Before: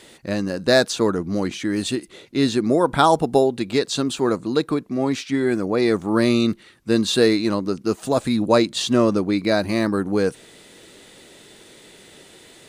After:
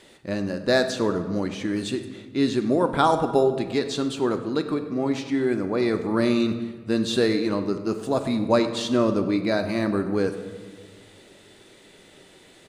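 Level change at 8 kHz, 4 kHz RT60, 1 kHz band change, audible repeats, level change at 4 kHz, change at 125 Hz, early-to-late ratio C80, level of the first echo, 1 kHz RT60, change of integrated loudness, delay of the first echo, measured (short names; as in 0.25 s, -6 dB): -8.0 dB, 0.95 s, -3.5 dB, 1, -5.5 dB, -3.5 dB, 11.0 dB, -18.5 dB, 1.5 s, -3.5 dB, 99 ms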